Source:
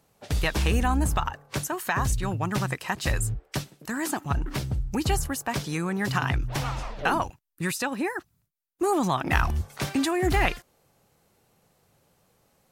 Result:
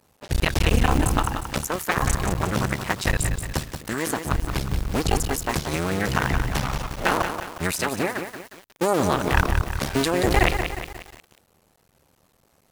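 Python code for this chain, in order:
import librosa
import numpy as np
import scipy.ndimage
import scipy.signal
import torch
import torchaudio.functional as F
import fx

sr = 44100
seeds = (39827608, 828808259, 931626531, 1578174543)

y = fx.cycle_switch(x, sr, every=2, mode='muted')
y = fx.echo_crushed(y, sr, ms=179, feedback_pct=55, bits=7, wet_db=-7.0)
y = F.gain(torch.from_numpy(y), 5.5).numpy()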